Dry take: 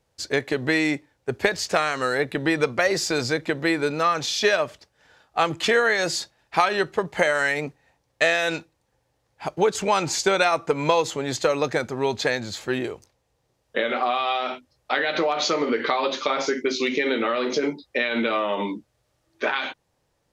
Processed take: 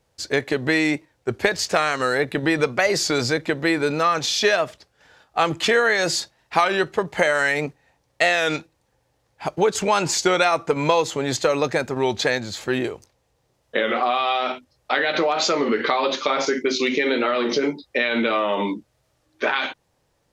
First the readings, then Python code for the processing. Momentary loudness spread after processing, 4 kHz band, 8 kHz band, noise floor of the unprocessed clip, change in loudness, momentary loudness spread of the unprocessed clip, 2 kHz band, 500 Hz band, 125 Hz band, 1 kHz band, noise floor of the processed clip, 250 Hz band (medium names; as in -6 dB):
7 LU, +2.5 dB, +3.0 dB, -72 dBFS, +2.0 dB, 8 LU, +2.0 dB, +2.0 dB, +2.5 dB, +2.0 dB, -68 dBFS, +2.5 dB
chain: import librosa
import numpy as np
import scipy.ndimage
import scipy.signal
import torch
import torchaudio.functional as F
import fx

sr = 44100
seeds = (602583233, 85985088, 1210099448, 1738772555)

p1 = fx.level_steps(x, sr, step_db=15)
p2 = x + (p1 * librosa.db_to_amplitude(-3.0))
y = fx.record_warp(p2, sr, rpm=33.33, depth_cents=100.0)